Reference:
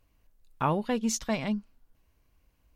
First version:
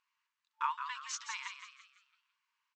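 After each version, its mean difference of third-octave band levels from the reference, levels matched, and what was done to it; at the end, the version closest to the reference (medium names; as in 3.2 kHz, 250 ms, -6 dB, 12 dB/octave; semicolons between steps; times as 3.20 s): 17.5 dB: median filter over 5 samples; FFT band-pass 880–8200 Hz; on a send: frequency-shifting echo 168 ms, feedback 41%, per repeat +81 Hz, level -8 dB; on the sum: trim -3.5 dB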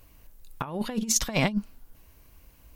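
7.5 dB: compressor with a negative ratio -33 dBFS, ratio -0.5; treble shelf 9.1 kHz +10.5 dB; trim +6.5 dB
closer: second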